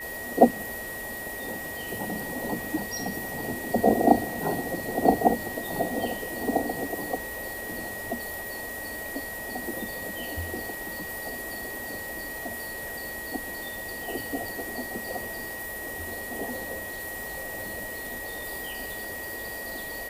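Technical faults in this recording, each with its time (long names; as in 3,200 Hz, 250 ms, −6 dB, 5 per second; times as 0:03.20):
whistle 1,900 Hz −36 dBFS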